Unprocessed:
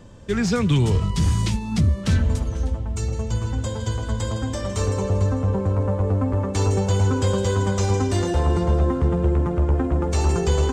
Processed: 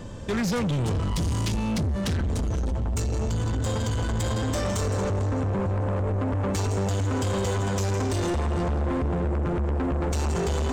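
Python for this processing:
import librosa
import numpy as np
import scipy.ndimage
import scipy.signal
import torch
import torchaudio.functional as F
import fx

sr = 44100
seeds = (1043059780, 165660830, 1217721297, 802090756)

p1 = fx.over_compress(x, sr, threshold_db=-26.0, ratio=-1.0)
p2 = x + F.gain(torch.from_numpy(p1), -2.5).numpy()
y = 10.0 ** (-23.0 / 20.0) * np.tanh(p2 / 10.0 ** (-23.0 / 20.0))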